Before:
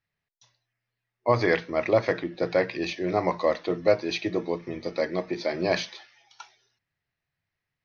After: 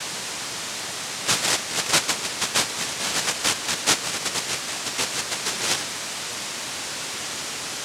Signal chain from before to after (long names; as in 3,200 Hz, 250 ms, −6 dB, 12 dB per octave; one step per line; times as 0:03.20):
steady tone 790 Hz −29 dBFS
cochlear-implant simulation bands 1